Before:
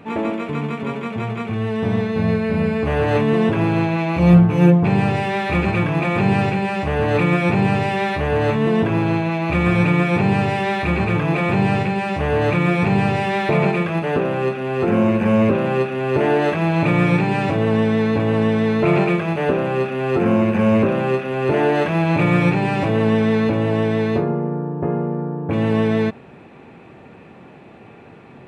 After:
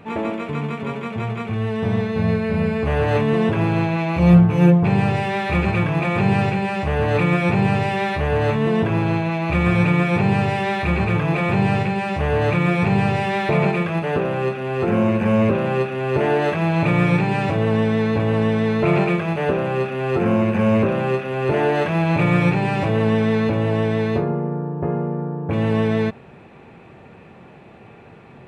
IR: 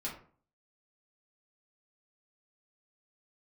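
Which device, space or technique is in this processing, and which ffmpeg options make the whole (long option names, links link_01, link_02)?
low shelf boost with a cut just above: -af "lowshelf=frequency=81:gain=5.5,equalizer=frequency=280:width_type=o:width=0.52:gain=-4.5,volume=-1dB"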